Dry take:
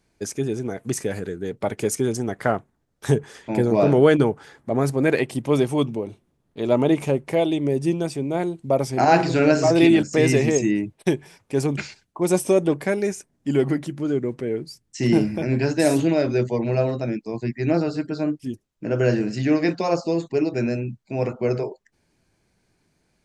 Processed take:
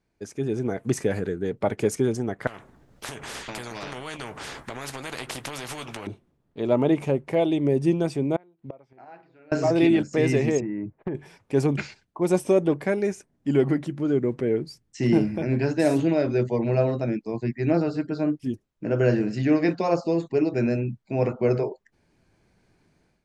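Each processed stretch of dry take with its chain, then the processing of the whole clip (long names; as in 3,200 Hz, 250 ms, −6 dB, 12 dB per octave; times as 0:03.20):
0:02.47–0:06.07: downward compressor 8 to 1, threshold −26 dBFS + double-tracking delay 16 ms −12 dB + every bin compressed towards the loudest bin 4 to 1
0:08.36–0:09.52: low-pass filter 2,600 Hz + low-shelf EQ 430 Hz −10 dB + gate with flip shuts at −27 dBFS, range −27 dB
0:10.60–0:11.15: inverse Chebyshev low-pass filter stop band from 7,700 Hz, stop band 70 dB + downward compressor 20 to 1, threshold −23 dBFS + hard clipping −18.5 dBFS
whole clip: high-shelf EQ 4,500 Hz −10 dB; automatic gain control; level −7.5 dB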